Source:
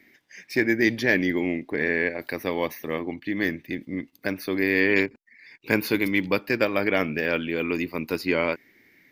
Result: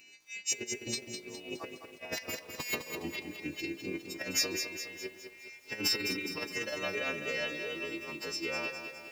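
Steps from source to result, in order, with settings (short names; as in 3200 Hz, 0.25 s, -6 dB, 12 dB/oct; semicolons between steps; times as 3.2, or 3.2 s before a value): frequency quantiser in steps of 2 st; Doppler pass-by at 2.41, 16 m/s, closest 10 m; negative-ratio compressor -38 dBFS, ratio -0.5; high shelf 2700 Hz +10 dB; formant shift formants +3 st; notch 3300 Hz, Q 8.3; narrowing echo 0.133 s, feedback 80%, band-pass 730 Hz, level -17 dB; lo-fi delay 0.206 s, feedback 55%, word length 9-bit, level -7 dB; gain -3 dB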